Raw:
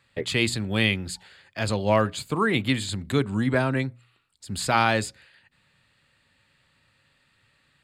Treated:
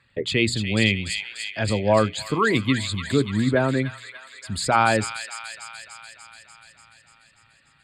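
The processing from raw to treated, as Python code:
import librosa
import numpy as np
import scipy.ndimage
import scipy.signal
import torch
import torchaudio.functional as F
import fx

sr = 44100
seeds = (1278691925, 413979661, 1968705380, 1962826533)

y = fx.envelope_sharpen(x, sr, power=1.5)
y = fx.echo_wet_highpass(y, sr, ms=293, feedback_pct=67, hz=2100.0, wet_db=-5.5)
y = y * 10.0 ** (2.5 / 20.0)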